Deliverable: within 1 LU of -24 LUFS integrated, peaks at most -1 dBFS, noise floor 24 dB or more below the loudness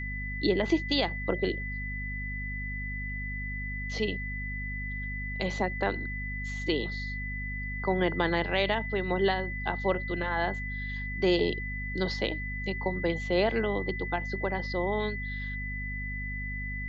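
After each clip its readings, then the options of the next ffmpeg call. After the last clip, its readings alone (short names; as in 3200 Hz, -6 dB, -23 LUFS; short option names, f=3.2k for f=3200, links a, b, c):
hum 50 Hz; harmonics up to 250 Hz; hum level -34 dBFS; steady tone 2000 Hz; tone level -36 dBFS; loudness -31.0 LUFS; peak -13.0 dBFS; loudness target -24.0 LUFS
-> -af "bandreject=f=50:t=h:w=6,bandreject=f=100:t=h:w=6,bandreject=f=150:t=h:w=6,bandreject=f=200:t=h:w=6,bandreject=f=250:t=h:w=6"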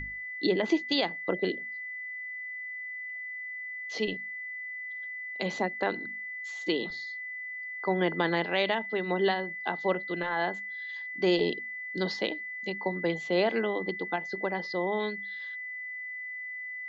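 hum none; steady tone 2000 Hz; tone level -36 dBFS
-> -af "bandreject=f=2k:w=30"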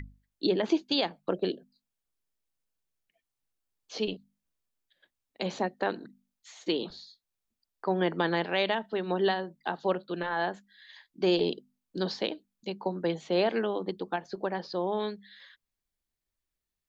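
steady tone none; loudness -31.0 LUFS; peak -14.0 dBFS; loudness target -24.0 LUFS
-> -af "volume=7dB"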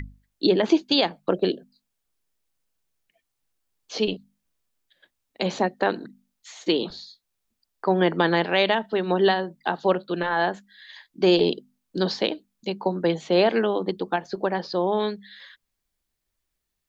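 loudness -24.0 LUFS; peak -7.0 dBFS; noise floor -80 dBFS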